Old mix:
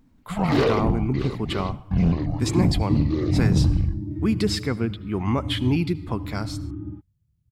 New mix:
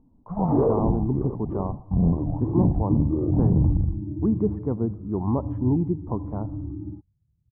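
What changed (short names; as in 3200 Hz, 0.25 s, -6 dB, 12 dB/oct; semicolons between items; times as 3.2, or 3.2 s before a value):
second sound: add air absorption 330 m; master: add Chebyshev low-pass 960 Hz, order 4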